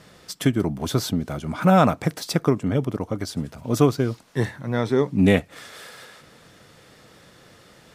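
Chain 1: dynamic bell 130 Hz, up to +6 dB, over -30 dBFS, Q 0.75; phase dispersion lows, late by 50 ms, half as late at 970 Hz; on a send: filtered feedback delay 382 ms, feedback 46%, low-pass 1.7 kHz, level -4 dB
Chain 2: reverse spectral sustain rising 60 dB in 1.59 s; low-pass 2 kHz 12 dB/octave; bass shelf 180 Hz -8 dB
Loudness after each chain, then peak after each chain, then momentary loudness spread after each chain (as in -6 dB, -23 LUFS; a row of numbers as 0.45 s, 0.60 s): -18.5 LUFS, -21.5 LUFS; -1.5 dBFS, -2.0 dBFS; 12 LU, 10 LU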